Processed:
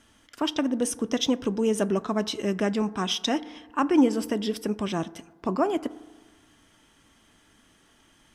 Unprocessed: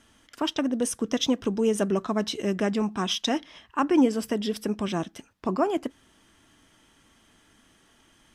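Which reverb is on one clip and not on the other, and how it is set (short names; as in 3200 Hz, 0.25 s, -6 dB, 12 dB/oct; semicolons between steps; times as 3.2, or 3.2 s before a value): FDN reverb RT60 1.3 s, low-frequency decay 1×, high-frequency decay 0.3×, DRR 16.5 dB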